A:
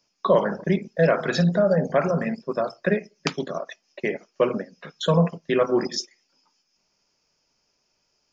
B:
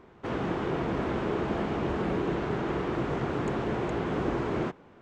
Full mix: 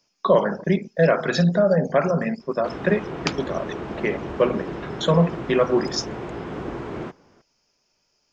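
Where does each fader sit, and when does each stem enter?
+1.5, -2.0 dB; 0.00, 2.40 s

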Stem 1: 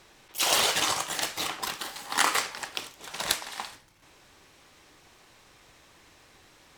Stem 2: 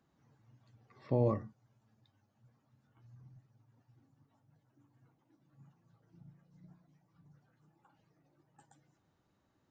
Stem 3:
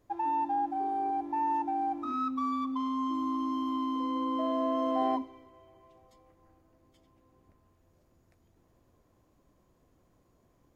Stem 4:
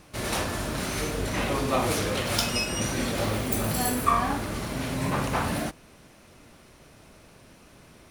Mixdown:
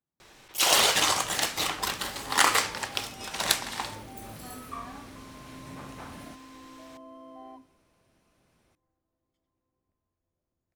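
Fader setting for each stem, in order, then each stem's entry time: +2.5, -18.5, -18.0, -17.0 dB; 0.20, 0.00, 2.40, 0.65 s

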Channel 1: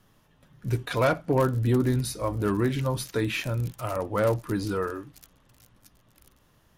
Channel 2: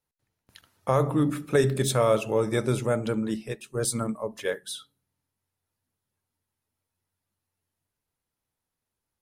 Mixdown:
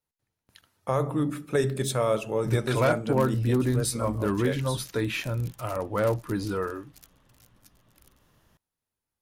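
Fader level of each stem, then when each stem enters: -1.0, -3.0 dB; 1.80, 0.00 s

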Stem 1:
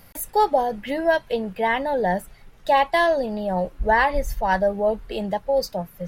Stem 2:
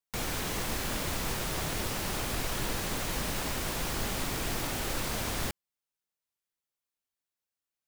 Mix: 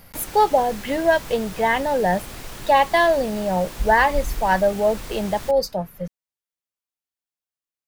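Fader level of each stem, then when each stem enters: +2.0, -4.0 dB; 0.00, 0.00 s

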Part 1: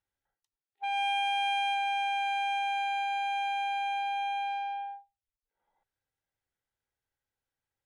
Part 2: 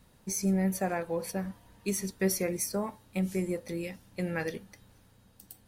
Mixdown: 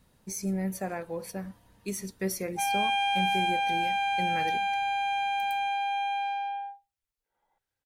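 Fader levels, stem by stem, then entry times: +2.5, -3.0 dB; 1.75, 0.00 s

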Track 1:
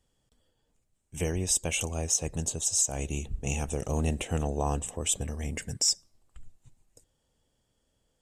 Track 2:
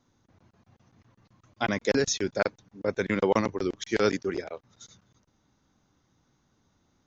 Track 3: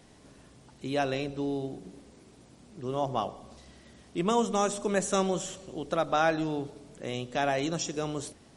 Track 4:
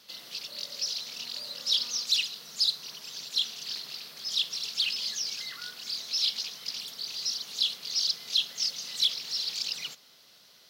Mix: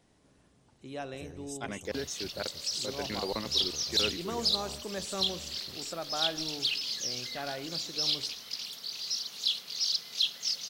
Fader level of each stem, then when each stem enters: -18.0, -11.5, -10.5, -2.0 dB; 0.00, 0.00, 0.00, 1.85 s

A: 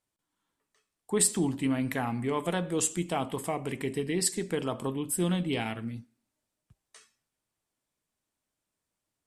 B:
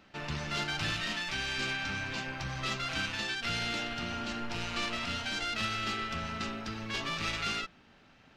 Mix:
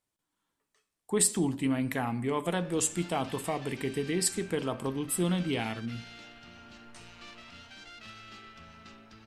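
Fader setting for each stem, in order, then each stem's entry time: -0.5, -14.5 dB; 0.00, 2.45 s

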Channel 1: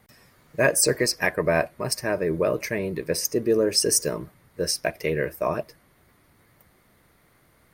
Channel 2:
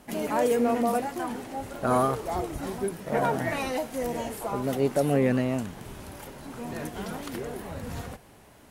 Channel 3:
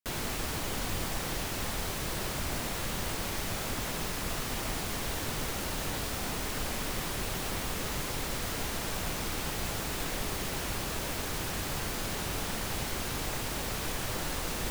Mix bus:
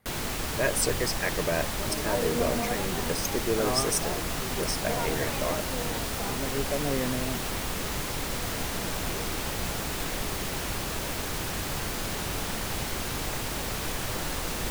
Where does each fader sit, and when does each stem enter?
-7.0, -7.0, +2.5 dB; 0.00, 1.75, 0.00 s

